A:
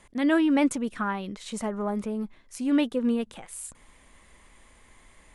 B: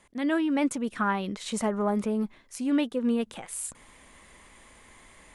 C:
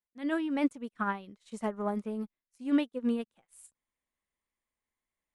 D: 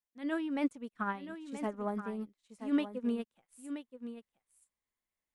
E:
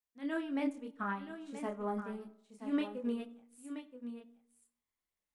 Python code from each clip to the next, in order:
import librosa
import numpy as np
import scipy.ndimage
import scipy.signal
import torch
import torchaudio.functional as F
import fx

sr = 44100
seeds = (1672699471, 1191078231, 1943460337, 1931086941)

y1 = fx.low_shelf(x, sr, hz=62.0, db=-9.5)
y1 = fx.rider(y1, sr, range_db=4, speed_s=0.5)
y2 = fx.upward_expand(y1, sr, threshold_db=-47.0, expansion=2.5)
y3 = y2 + 10.0 ** (-10.5 / 20.0) * np.pad(y2, (int(977 * sr / 1000.0), 0))[:len(y2)]
y3 = F.gain(torch.from_numpy(y3), -3.5).numpy()
y4 = fx.chorus_voices(y3, sr, voices=2, hz=0.58, base_ms=27, depth_ms=2.6, mix_pct=40)
y4 = fx.rev_freeverb(y4, sr, rt60_s=0.78, hf_ratio=0.35, predelay_ms=15, drr_db=16.5)
y4 = F.gain(torch.from_numpy(y4), 1.0).numpy()